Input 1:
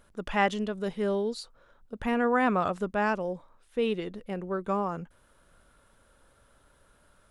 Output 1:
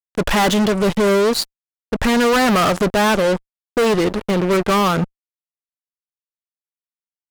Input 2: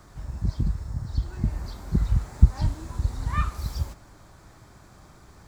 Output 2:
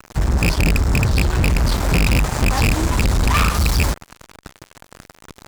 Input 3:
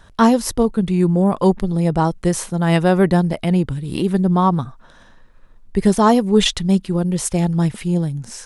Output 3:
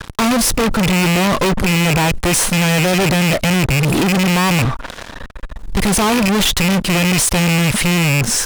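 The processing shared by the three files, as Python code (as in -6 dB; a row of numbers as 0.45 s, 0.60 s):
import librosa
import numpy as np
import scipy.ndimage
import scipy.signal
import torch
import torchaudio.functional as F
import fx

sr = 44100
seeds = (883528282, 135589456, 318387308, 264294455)

y = fx.rattle_buzz(x, sr, strikes_db=-24.0, level_db=-5.0)
y = fx.fuzz(y, sr, gain_db=39.0, gate_db=-44.0)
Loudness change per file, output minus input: +12.5 LU, +10.0 LU, +3.0 LU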